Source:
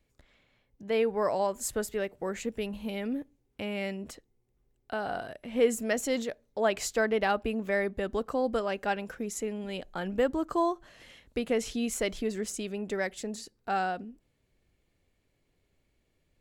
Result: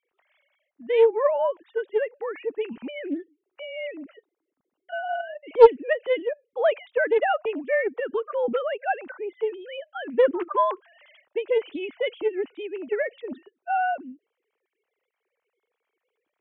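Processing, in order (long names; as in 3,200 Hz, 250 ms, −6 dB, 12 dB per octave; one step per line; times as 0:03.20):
three sine waves on the formant tracks
highs frequency-modulated by the lows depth 0.26 ms
level +6.5 dB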